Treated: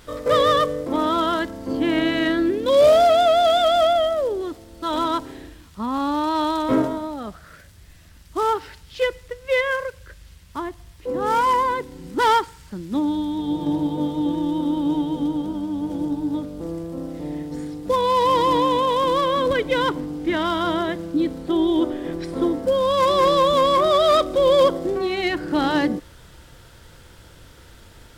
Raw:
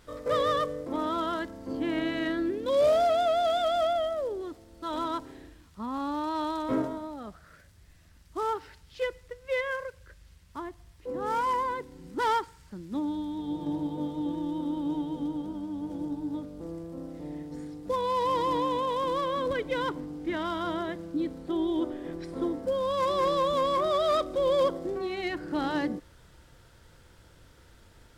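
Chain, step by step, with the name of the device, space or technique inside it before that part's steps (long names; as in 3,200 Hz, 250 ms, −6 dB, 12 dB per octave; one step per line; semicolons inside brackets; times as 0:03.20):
presence and air boost (parametric band 3,200 Hz +2.5 dB; high-shelf EQ 9,800 Hz +4.5 dB)
level +9 dB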